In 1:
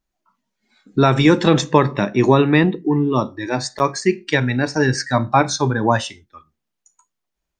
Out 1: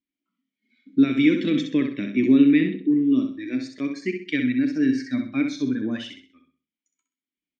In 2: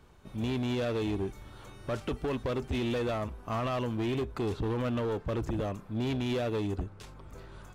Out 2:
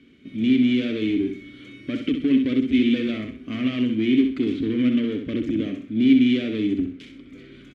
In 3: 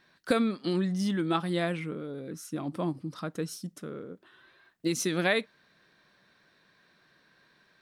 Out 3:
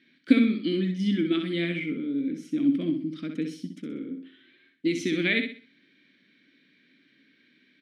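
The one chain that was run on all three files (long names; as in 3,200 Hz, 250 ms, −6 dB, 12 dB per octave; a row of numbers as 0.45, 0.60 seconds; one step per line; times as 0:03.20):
formant filter i
on a send: repeating echo 64 ms, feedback 33%, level −6.5 dB
on the sum: normalise the peak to −6 dBFS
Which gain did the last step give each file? +4.0, +20.0, +15.5 decibels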